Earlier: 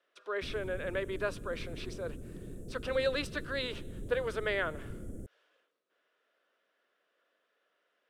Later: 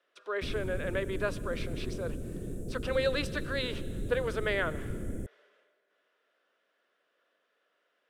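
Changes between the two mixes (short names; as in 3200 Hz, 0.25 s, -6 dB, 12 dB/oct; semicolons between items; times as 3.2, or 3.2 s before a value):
background +6.5 dB; reverb: on, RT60 2.3 s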